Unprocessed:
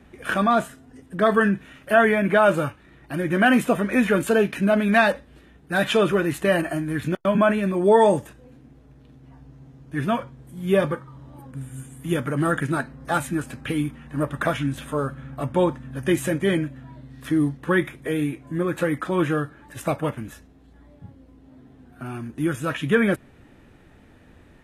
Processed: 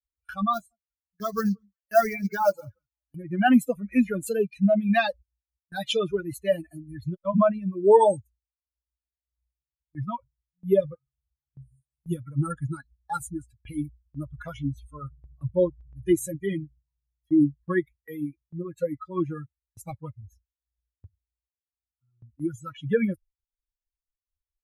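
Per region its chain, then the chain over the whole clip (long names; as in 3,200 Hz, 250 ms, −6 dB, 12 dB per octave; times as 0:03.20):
0:00.53–0:03.14: notch comb filter 160 Hz + floating-point word with a short mantissa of 2 bits + delay that swaps between a low-pass and a high-pass 177 ms, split 1,200 Hz, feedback 53%, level −12 dB
whole clip: spectral dynamics exaggerated over time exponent 3; noise gate with hold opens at −47 dBFS; dynamic equaliser 1,800 Hz, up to −8 dB, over −43 dBFS, Q 1.1; level +4.5 dB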